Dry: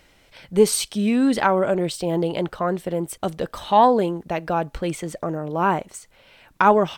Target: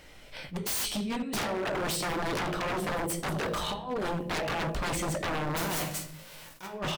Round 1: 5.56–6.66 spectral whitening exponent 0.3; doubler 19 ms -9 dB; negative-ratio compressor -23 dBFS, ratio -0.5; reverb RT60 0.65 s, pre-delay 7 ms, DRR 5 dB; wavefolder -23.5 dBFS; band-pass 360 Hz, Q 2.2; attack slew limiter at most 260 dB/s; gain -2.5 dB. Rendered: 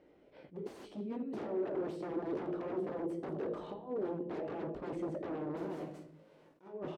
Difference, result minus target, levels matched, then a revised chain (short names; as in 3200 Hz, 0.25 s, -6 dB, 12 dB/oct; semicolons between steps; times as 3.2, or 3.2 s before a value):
500 Hz band +4.5 dB
5.56–6.66 spectral whitening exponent 0.3; doubler 19 ms -9 dB; negative-ratio compressor -23 dBFS, ratio -0.5; reverb RT60 0.65 s, pre-delay 7 ms, DRR 5 dB; wavefolder -23.5 dBFS; attack slew limiter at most 260 dB/s; gain -2.5 dB